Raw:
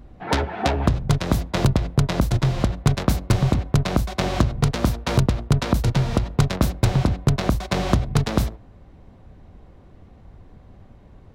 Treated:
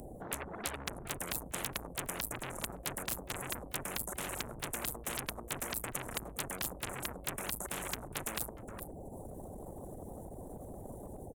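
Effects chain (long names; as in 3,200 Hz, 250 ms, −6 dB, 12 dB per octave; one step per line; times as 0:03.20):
automatic gain control gain up to 9 dB
elliptic band-stop filter 570–9,100 Hz, stop band 40 dB
tube saturation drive 25 dB, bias 0.35
brickwall limiter −33 dBFS, peak gain reduction 10.5 dB
single-tap delay 414 ms −17.5 dB
reverb reduction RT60 0.89 s
every bin compressed towards the loudest bin 4 to 1
level +18 dB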